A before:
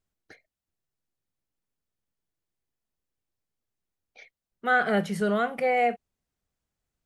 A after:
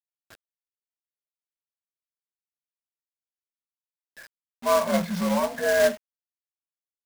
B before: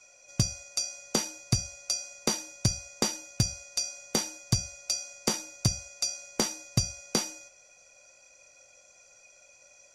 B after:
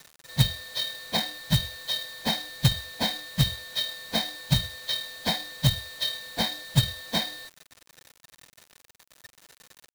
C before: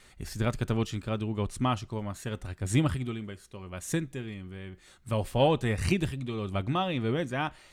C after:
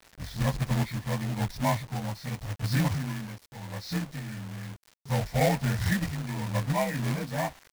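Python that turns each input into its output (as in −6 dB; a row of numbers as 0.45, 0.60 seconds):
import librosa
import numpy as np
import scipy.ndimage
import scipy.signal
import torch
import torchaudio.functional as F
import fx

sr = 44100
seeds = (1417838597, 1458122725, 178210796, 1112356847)

y = fx.partial_stretch(x, sr, pct=86)
y = fx.high_shelf(y, sr, hz=4500.0, db=-10.0)
y = fx.fixed_phaser(y, sr, hz=1900.0, stages=8)
y = fx.quant_companded(y, sr, bits=4)
y = y * 10.0 ** (-30 / 20.0) / np.sqrt(np.mean(np.square(y)))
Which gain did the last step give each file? +7.0, +9.5, +5.0 decibels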